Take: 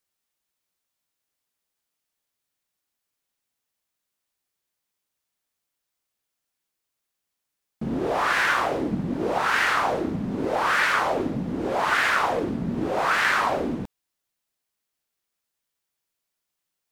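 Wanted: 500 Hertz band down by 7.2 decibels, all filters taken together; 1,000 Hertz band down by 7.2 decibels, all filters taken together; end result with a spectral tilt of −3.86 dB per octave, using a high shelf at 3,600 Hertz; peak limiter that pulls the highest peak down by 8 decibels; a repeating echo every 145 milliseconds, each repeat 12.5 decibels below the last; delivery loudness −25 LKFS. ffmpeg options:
ffmpeg -i in.wav -af "equalizer=frequency=500:width_type=o:gain=-7,equalizer=frequency=1000:width_type=o:gain=-8.5,highshelf=frequency=3600:gain=6,alimiter=limit=-18.5dB:level=0:latency=1,aecho=1:1:145|290|435:0.237|0.0569|0.0137,volume=3.5dB" out.wav

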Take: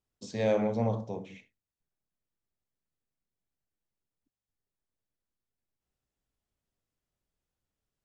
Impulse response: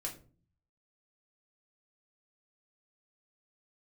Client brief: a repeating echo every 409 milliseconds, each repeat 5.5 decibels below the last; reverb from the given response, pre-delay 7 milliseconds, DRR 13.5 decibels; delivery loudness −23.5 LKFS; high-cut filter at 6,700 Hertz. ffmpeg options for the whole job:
-filter_complex "[0:a]lowpass=6700,aecho=1:1:409|818|1227|1636|2045|2454|2863:0.531|0.281|0.149|0.079|0.0419|0.0222|0.0118,asplit=2[link_01][link_02];[1:a]atrim=start_sample=2205,adelay=7[link_03];[link_02][link_03]afir=irnorm=-1:irlink=0,volume=-13dB[link_04];[link_01][link_04]amix=inputs=2:normalize=0,volume=8dB"

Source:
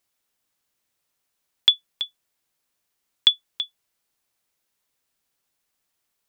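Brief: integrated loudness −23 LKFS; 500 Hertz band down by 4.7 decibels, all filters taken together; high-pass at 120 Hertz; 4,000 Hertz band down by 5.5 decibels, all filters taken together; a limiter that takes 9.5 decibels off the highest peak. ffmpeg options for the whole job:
ffmpeg -i in.wav -af "highpass=120,equalizer=frequency=500:width_type=o:gain=-6,equalizer=frequency=4000:width_type=o:gain=-6.5,volume=11dB,alimiter=limit=-5.5dB:level=0:latency=1" out.wav

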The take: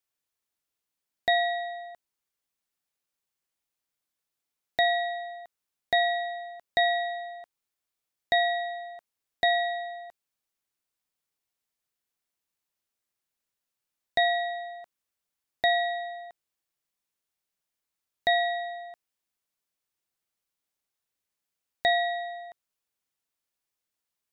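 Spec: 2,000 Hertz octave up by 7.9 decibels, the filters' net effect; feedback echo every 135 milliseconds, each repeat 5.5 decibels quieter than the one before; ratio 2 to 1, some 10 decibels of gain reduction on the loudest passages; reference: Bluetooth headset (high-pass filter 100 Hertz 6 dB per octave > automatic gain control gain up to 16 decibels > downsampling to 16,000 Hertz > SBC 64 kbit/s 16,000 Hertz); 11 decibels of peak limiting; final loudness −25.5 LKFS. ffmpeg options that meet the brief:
ffmpeg -i in.wav -af "equalizer=frequency=2000:width_type=o:gain=8,acompressor=threshold=-34dB:ratio=2,alimiter=level_in=1.5dB:limit=-24dB:level=0:latency=1,volume=-1.5dB,highpass=frequency=100:poles=1,aecho=1:1:135|270|405|540|675|810|945:0.531|0.281|0.149|0.079|0.0419|0.0222|0.0118,dynaudnorm=maxgain=16dB,aresample=16000,aresample=44100,volume=-6.5dB" -ar 16000 -c:a sbc -b:a 64k out.sbc

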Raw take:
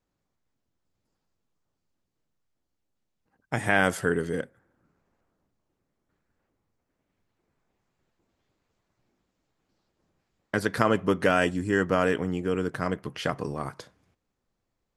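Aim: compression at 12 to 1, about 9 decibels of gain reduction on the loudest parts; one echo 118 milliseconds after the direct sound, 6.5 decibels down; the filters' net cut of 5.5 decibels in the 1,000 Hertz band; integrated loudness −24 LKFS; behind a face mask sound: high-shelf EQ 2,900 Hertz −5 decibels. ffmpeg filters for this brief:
ffmpeg -i in.wav -af "equalizer=frequency=1000:width_type=o:gain=-7.5,acompressor=threshold=-28dB:ratio=12,highshelf=frequency=2900:gain=-5,aecho=1:1:118:0.473,volume=10.5dB" out.wav

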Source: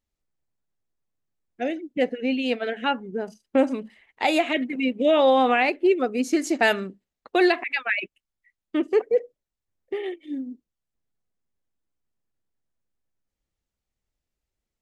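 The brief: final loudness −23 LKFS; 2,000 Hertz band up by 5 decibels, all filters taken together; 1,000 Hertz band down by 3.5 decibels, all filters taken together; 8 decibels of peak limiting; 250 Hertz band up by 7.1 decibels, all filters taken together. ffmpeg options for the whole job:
ffmpeg -i in.wav -af "equalizer=frequency=250:width_type=o:gain=9,equalizer=frequency=1000:width_type=o:gain=-8,equalizer=frequency=2000:width_type=o:gain=8,volume=-0.5dB,alimiter=limit=-12.5dB:level=0:latency=1" out.wav

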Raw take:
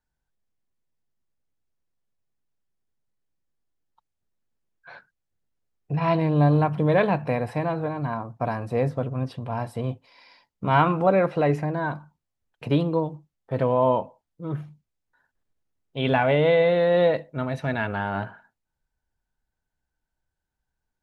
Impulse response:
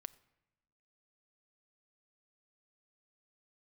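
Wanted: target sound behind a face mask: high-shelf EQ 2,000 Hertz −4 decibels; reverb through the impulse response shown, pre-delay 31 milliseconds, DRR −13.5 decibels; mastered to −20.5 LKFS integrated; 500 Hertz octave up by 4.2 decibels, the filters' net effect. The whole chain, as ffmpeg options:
-filter_complex "[0:a]equalizer=frequency=500:width_type=o:gain=5,asplit=2[link_01][link_02];[1:a]atrim=start_sample=2205,adelay=31[link_03];[link_02][link_03]afir=irnorm=-1:irlink=0,volume=18.5dB[link_04];[link_01][link_04]amix=inputs=2:normalize=0,highshelf=frequency=2000:gain=-4,volume=-12.5dB"

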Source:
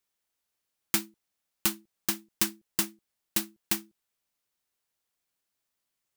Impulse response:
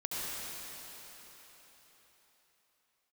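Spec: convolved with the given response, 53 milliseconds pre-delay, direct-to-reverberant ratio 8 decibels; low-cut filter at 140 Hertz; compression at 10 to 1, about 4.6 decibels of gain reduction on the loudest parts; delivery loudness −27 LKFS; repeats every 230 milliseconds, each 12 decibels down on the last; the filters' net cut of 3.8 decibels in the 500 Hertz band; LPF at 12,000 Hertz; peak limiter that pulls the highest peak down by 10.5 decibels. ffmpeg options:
-filter_complex "[0:a]highpass=140,lowpass=12000,equalizer=frequency=500:width_type=o:gain=-7.5,acompressor=threshold=-30dB:ratio=10,alimiter=limit=-24dB:level=0:latency=1,aecho=1:1:230|460|690:0.251|0.0628|0.0157,asplit=2[link_01][link_02];[1:a]atrim=start_sample=2205,adelay=53[link_03];[link_02][link_03]afir=irnorm=-1:irlink=0,volume=-13dB[link_04];[link_01][link_04]amix=inputs=2:normalize=0,volume=18dB"

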